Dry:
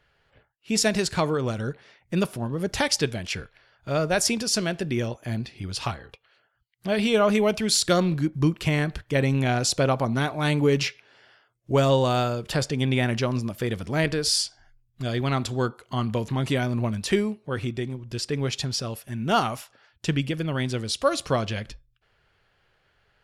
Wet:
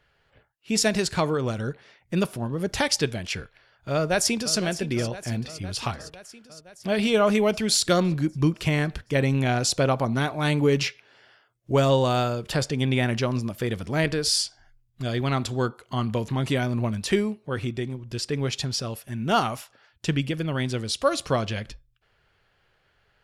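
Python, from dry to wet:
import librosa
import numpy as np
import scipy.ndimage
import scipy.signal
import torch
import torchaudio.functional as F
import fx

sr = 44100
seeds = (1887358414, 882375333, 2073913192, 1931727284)

y = fx.echo_throw(x, sr, start_s=3.94, length_s=0.62, ms=510, feedback_pct=70, wet_db=-13.5)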